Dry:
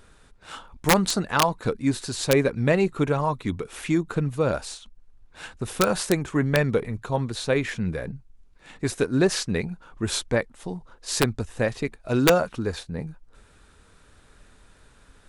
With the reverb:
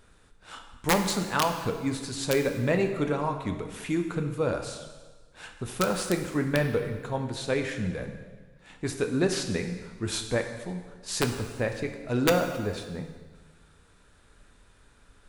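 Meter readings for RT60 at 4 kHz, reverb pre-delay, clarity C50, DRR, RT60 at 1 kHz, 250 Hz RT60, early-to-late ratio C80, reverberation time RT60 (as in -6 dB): 1.3 s, 4 ms, 7.5 dB, 5.0 dB, 1.4 s, 1.4 s, 9.0 dB, 1.4 s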